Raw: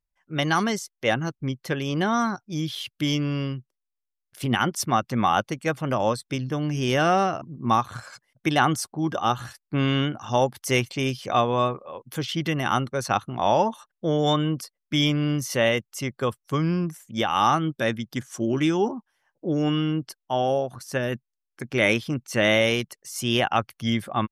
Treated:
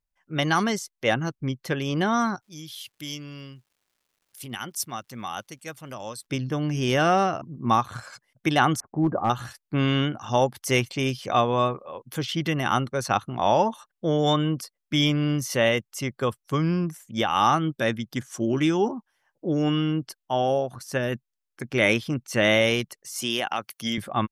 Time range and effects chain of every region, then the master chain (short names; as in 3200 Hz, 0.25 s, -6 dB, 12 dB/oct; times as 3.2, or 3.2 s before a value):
2.41–6.25 pre-emphasis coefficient 0.8 + crackle 430/s -60 dBFS
8.8–9.3 sample leveller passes 1 + Gaussian blur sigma 7.2 samples + hard clip -15.5 dBFS
23.22–23.98 HPF 210 Hz + compressor 4:1, threshold -23 dBFS + high shelf 4700 Hz +10.5 dB
whole clip: dry